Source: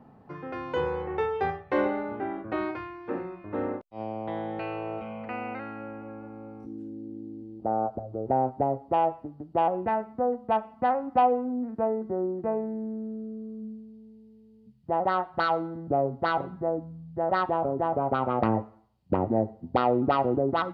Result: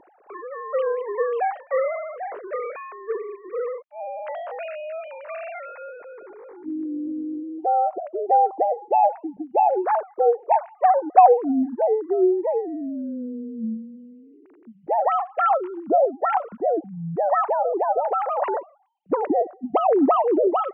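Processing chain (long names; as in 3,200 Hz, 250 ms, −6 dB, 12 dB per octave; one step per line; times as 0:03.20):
three sine waves on the formant tracks
level +6 dB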